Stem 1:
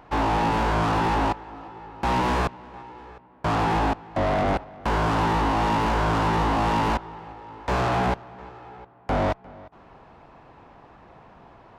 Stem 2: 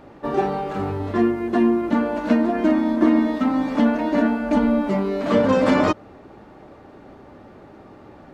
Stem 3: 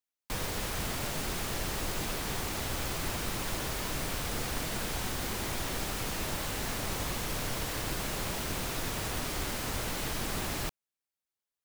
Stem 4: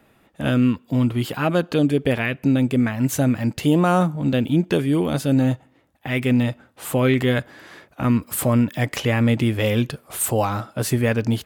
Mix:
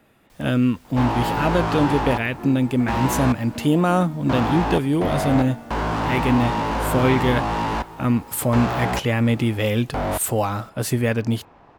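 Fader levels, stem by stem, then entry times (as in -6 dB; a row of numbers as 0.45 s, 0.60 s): -1.0 dB, -17.0 dB, -20.0 dB, -1.0 dB; 0.85 s, 1.25 s, 0.00 s, 0.00 s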